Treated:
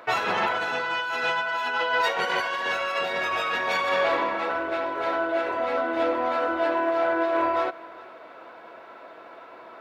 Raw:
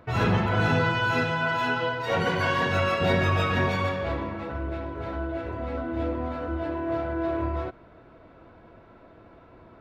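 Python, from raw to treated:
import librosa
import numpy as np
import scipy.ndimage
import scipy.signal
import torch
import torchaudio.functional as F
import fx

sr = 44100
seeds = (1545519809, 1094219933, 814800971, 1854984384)

y = scipy.signal.sosfilt(scipy.signal.butter(2, 620.0, 'highpass', fs=sr, output='sos'), x)
y = fx.over_compress(y, sr, threshold_db=-33.0, ratio=-1.0)
y = y + 10.0 ** (-21.5 / 20.0) * np.pad(y, (int(411 * sr / 1000.0), 0))[:len(y)]
y = F.gain(torch.from_numpy(y), 8.0).numpy()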